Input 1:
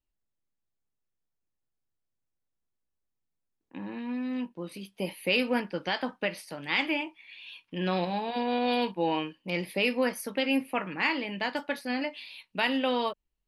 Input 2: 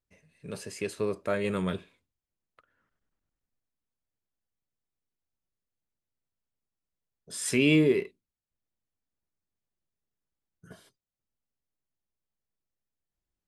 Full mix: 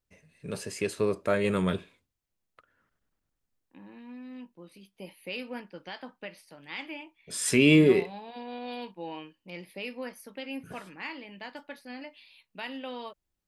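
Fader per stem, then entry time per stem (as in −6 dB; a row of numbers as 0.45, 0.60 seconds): −11.0, +3.0 decibels; 0.00, 0.00 seconds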